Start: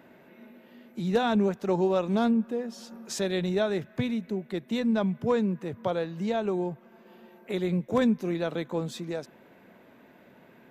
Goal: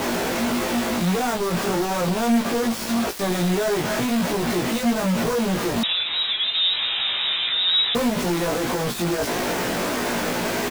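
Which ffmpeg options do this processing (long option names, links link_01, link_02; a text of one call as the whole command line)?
ffmpeg -i in.wav -filter_complex "[0:a]aeval=exprs='val(0)+0.5*0.0335*sgn(val(0))':channel_layout=same,highshelf=frequency=2700:gain=6.5,acrossover=split=320[link_01][link_02];[link_02]acompressor=threshold=-35dB:ratio=2[link_03];[link_01][link_03]amix=inputs=2:normalize=0,flanger=delay=19.5:depth=3.9:speed=1.6,asplit=2[link_04][link_05];[link_05]highpass=frequency=720:poles=1,volume=33dB,asoftclip=type=tanh:threshold=-17dB[link_06];[link_04][link_06]amix=inputs=2:normalize=0,lowpass=frequency=1200:poles=1,volume=-6dB,acrusher=bits=4:mix=0:aa=0.000001,asplit=2[link_07][link_08];[link_08]adelay=17,volume=-2.5dB[link_09];[link_07][link_09]amix=inputs=2:normalize=0,asettb=1/sr,asplit=3[link_10][link_11][link_12];[link_10]atrim=end=5.834[link_13];[link_11]atrim=start=5.83:end=7.95,asetpts=PTS-STARTPTS,afade=type=in:duration=0.004:curve=qsin,afade=type=out:start_time=2.116:duration=0.004:curve=qsin,lowpass=frequency=3400:width_type=q:width=0.5098,lowpass=frequency=3400:width_type=q:width=0.6013,lowpass=frequency=3400:width_type=q:width=0.9,lowpass=frequency=3400:width_type=q:width=2.563,afreqshift=-4000[link_14];[link_12]atrim=start=7.946[link_15];[link_13][link_14]acrossfade=duration=0.004:curve1=hsin:curve2=qsin[link_16];[link_16][link_15]acrossfade=duration=0.004:curve1=qsin:curve2=hsin" out.wav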